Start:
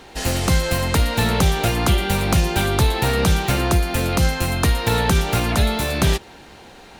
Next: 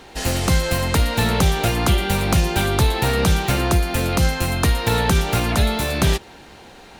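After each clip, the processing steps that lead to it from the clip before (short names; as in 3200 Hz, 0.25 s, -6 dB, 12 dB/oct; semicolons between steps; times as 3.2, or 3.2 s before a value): nothing audible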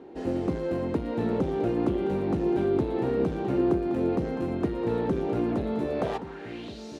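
soft clip -15 dBFS, distortion -13 dB; band-pass sweep 330 Hz -> 5600 Hz, 5.86–6.85; echo 1.123 s -12 dB; gain +4.5 dB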